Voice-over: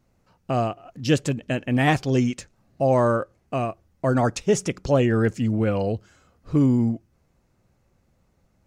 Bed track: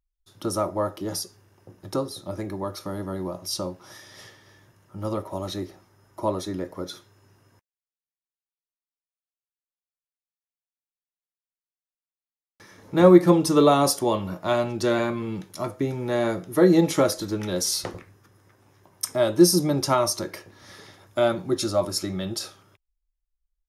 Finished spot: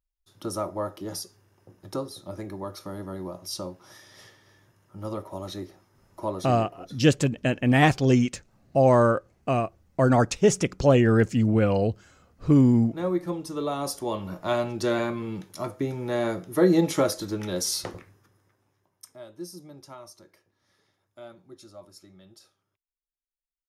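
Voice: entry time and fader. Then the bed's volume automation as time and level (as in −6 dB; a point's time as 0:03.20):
5.95 s, +1.0 dB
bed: 0:06.51 −4.5 dB
0:06.80 −13.5 dB
0:13.58 −13.5 dB
0:14.38 −2.5 dB
0:18.07 −2.5 dB
0:19.27 −23 dB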